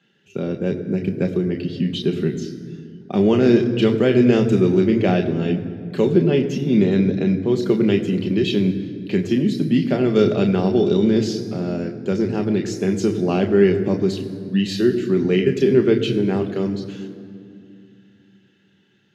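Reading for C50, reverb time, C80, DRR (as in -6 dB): 10.5 dB, 2.4 s, 11.5 dB, 4.0 dB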